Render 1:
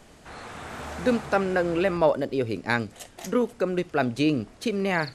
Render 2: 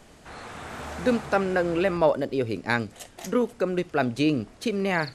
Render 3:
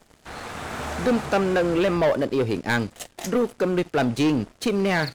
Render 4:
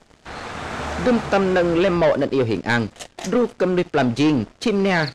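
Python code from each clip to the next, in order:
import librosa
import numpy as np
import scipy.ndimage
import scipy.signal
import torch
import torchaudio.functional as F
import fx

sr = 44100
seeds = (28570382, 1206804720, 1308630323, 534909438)

y1 = x
y2 = fx.leveller(y1, sr, passes=3)
y2 = y2 * 10.0 ** (-5.5 / 20.0)
y3 = scipy.signal.sosfilt(scipy.signal.butter(2, 6800.0, 'lowpass', fs=sr, output='sos'), y2)
y3 = y3 * 10.0 ** (3.5 / 20.0)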